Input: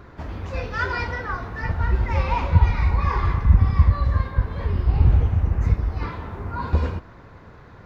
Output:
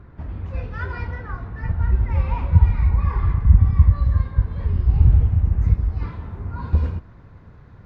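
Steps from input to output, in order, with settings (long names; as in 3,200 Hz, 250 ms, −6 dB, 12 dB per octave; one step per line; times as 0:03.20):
bass and treble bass +10 dB, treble −12 dB, from 0:03.95 treble −2 dB
level −7.5 dB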